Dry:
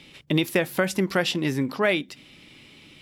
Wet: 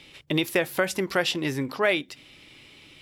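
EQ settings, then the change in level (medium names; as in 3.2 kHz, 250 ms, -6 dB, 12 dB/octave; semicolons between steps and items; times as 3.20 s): peaking EQ 200 Hz -8 dB 0.88 oct; 0.0 dB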